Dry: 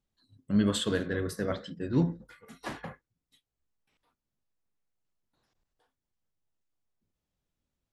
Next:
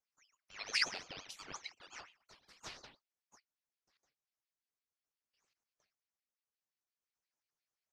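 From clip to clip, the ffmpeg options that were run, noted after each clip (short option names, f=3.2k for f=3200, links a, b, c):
-af "bandpass=f=3.5k:t=q:w=3:csg=0,aeval=exprs='val(0)*sin(2*PI*1900*n/s+1900*0.55/5.7*sin(2*PI*5.7*n/s))':c=same,volume=6dB"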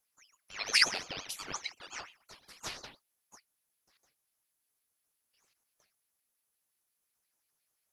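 -af "equalizer=f=11k:t=o:w=0.47:g=15,volume=7.5dB"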